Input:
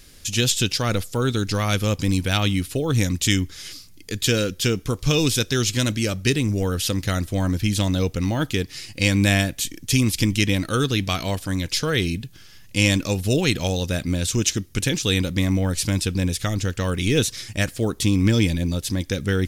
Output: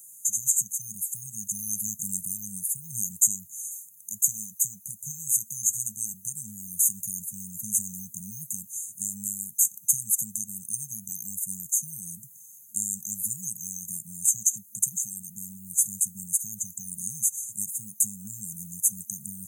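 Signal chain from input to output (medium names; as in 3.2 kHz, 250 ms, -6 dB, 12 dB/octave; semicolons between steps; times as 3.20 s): high-pass 120 Hz 24 dB/octave; compression 4:1, threshold -21 dBFS, peak gain reduction 7 dB; FFT band-reject 220–6200 Hz; tilt EQ +4.5 dB/octave; gain riding within 4 dB 2 s; trim -6 dB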